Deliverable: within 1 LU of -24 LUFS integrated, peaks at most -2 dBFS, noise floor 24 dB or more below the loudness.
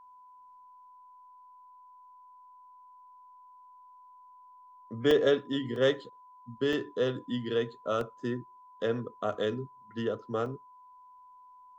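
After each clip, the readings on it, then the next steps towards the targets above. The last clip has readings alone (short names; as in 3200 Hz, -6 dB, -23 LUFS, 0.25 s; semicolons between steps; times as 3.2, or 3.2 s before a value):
dropouts 5; longest dropout 2.3 ms; steady tone 1000 Hz; tone level -52 dBFS; loudness -31.0 LUFS; peak -13.0 dBFS; loudness target -24.0 LUFS
-> interpolate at 5.11/5.76/6.73/8.01/10.46, 2.3 ms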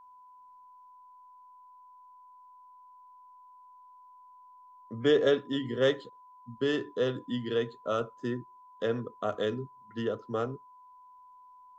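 dropouts 0; steady tone 1000 Hz; tone level -52 dBFS
-> notch 1000 Hz, Q 30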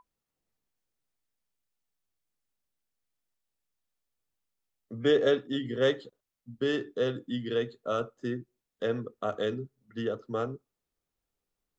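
steady tone none; loudness -31.0 LUFS; peak -13.0 dBFS; loudness target -24.0 LUFS
-> gain +7 dB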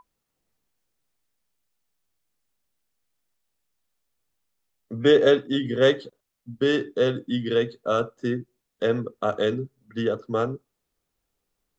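loudness -24.0 LUFS; peak -6.0 dBFS; noise floor -80 dBFS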